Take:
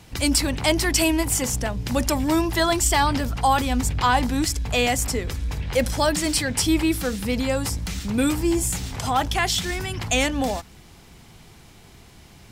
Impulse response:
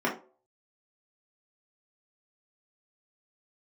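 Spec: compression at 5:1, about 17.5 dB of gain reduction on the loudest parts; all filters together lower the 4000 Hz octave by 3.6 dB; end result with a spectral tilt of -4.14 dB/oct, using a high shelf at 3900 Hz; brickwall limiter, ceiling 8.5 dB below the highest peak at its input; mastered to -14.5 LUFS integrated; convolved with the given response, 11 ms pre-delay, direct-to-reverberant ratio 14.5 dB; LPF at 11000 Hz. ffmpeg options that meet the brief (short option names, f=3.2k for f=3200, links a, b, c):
-filter_complex "[0:a]lowpass=11k,highshelf=f=3.9k:g=6,equalizer=f=4k:t=o:g=-9,acompressor=threshold=-36dB:ratio=5,alimiter=level_in=4dB:limit=-24dB:level=0:latency=1,volume=-4dB,asplit=2[a][b];[1:a]atrim=start_sample=2205,adelay=11[c];[b][c]afir=irnorm=-1:irlink=0,volume=-26dB[d];[a][d]amix=inputs=2:normalize=0,volume=24dB"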